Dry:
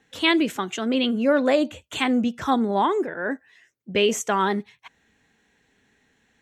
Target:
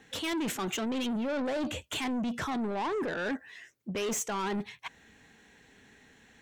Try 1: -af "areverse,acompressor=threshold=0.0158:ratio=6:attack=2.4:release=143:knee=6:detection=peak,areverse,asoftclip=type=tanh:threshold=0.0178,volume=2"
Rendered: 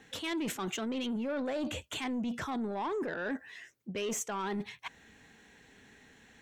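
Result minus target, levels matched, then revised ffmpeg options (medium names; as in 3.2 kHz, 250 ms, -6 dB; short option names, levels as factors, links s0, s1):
compression: peak gain reduction +6.5 dB
-af "areverse,acompressor=threshold=0.0376:ratio=6:attack=2.4:release=143:knee=6:detection=peak,areverse,asoftclip=type=tanh:threshold=0.0178,volume=2"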